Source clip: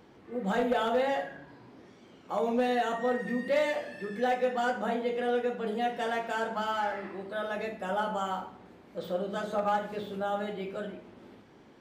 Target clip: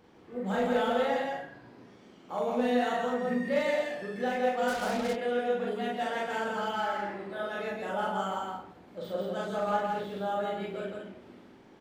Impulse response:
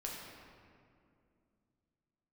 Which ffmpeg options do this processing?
-filter_complex "[0:a]aecho=1:1:40.82|166.2|215.7:1|0.794|0.501,asplit=3[a][b][c];[a]afade=t=out:st=4.67:d=0.02[d];[b]acrusher=bits=4:mix=0:aa=0.5,afade=t=in:st=4.67:d=0.02,afade=t=out:st=5.15:d=0.02[e];[c]afade=t=in:st=5.15:d=0.02[f];[d][e][f]amix=inputs=3:normalize=0,volume=-4.5dB"

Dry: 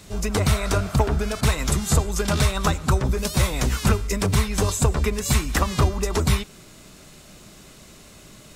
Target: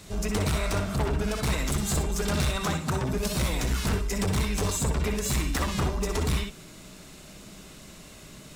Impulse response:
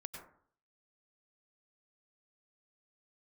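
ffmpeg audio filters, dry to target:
-filter_complex "[0:a]asettb=1/sr,asplit=3[a][b][c];[a]atrim=end=2.564[d];[b]atrim=start=2.56:end=3.13,asetpts=PTS-STARTPTS,afade=t=in:d=0.004:c=qsin,afade=t=out:st=0.566:d=0.004:c=qsin,highpass=f=86:w=0.5412,highpass=f=86:w=1.3066[e];[c]atrim=start=3.126[f];[d][e]acrossfade=d=0.004:c1=hsin:c2=qsin[g];[g][f]acrossfade=d=0.004:c1=qsin:c2=hsin,asoftclip=type=tanh:threshold=-21.5dB[h];[1:a]atrim=start_sample=2205,afade=t=out:st=0.16:d=0.01,atrim=end_sample=7497,asetrate=70560,aresample=44100[i];[h][i]afir=irnorm=-1:irlink=0,volume=8dB"

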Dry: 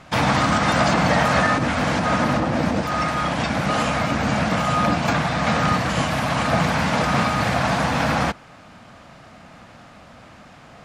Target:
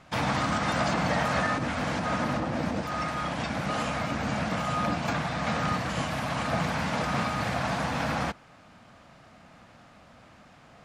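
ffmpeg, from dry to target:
-af "volume=-8.5dB"

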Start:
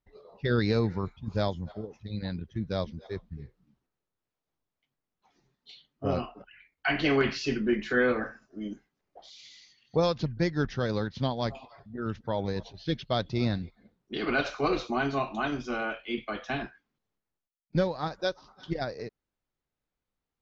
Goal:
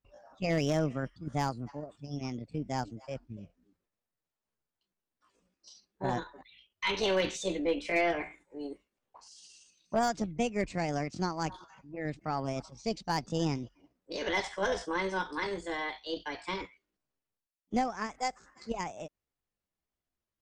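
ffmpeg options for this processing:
-af "asetrate=60591,aresample=44100,atempo=0.727827,aeval=exprs='0.237*(cos(1*acos(clip(val(0)/0.237,-1,1)))-cos(1*PI/2))+0.0376*(cos(2*acos(clip(val(0)/0.237,-1,1)))-cos(2*PI/2))+0.00596*(cos(4*acos(clip(val(0)/0.237,-1,1)))-cos(4*PI/2))+0.00335*(cos(6*acos(clip(val(0)/0.237,-1,1)))-cos(6*PI/2))':c=same,volume=16.5dB,asoftclip=hard,volume=-16.5dB,volume=-3.5dB"

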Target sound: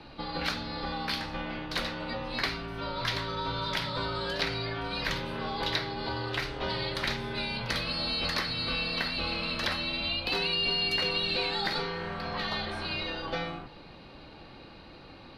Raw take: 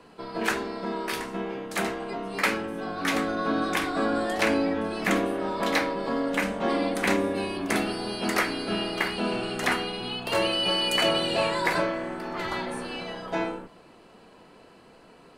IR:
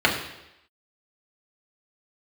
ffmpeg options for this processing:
-filter_complex "[0:a]highshelf=f=6k:t=q:w=3:g=-11,acrossover=split=810|4000[a][b][c];[a]acompressor=threshold=-41dB:ratio=4[d];[b]acompressor=threshold=-38dB:ratio=4[e];[c]acompressor=threshold=-35dB:ratio=4[f];[d][e][f]amix=inputs=3:normalize=0,afreqshift=-160,volume=3dB"

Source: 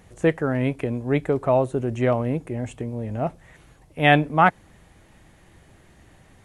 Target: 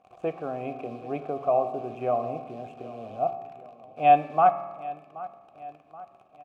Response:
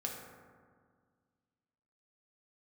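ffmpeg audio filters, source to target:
-filter_complex "[0:a]lowshelf=f=440:g=11.5,acrusher=bits=7:dc=4:mix=0:aa=0.000001,asplit=3[a][b][c];[a]bandpass=f=730:t=q:w=8,volume=0dB[d];[b]bandpass=f=1.09k:t=q:w=8,volume=-6dB[e];[c]bandpass=f=2.44k:t=q:w=8,volume=-9dB[f];[d][e][f]amix=inputs=3:normalize=0,asplit=2[g][h];[h]adelay=777,lowpass=f=3.3k:p=1,volume=-18dB,asplit=2[i][j];[j]adelay=777,lowpass=f=3.3k:p=1,volume=0.52,asplit=2[k][l];[l]adelay=777,lowpass=f=3.3k:p=1,volume=0.52,asplit=2[m][n];[n]adelay=777,lowpass=f=3.3k:p=1,volume=0.52[o];[g][i][k][m][o]amix=inputs=5:normalize=0,asplit=2[p][q];[1:a]atrim=start_sample=2205,asetrate=66150,aresample=44100[r];[q][r]afir=irnorm=-1:irlink=0,volume=-1dB[s];[p][s]amix=inputs=2:normalize=0,volume=-2.5dB"

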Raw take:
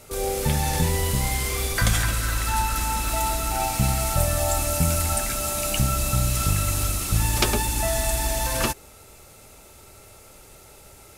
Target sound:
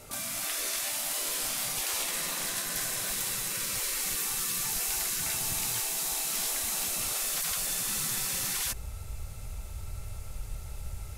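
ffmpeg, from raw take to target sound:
-af "afftfilt=real='re*lt(hypot(re,im),0.0708)':imag='im*lt(hypot(re,im),0.0708)':win_size=1024:overlap=0.75,asubboost=boost=10.5:cutoff=99,volume=-1.5dB"

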